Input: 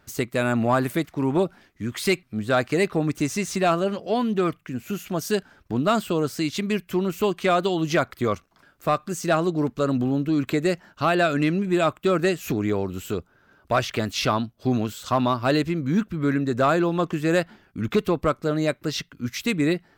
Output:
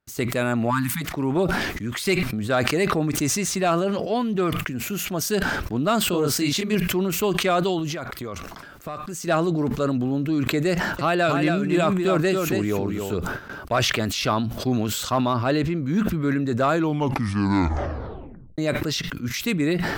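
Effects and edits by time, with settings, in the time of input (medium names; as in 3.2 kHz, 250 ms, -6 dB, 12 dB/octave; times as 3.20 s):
0.70–1.02 s: spectral selection erased 290–800 Hz
6.10–6.75 s: doubling 28 ms -3.5 dB
7.79–9.27 s: compression, threshold -28 dBFS
10.71–13.17 s: delay 276 ms -5.5 dB
15.33–15.82 s: treble shelf 5.5 kHz -8.5 dB
16.71 s: tape stop 1.87 s
whole clip: gate with hold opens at -47 dBFS; decay stretcher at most 30 dB/s; trim -1 dB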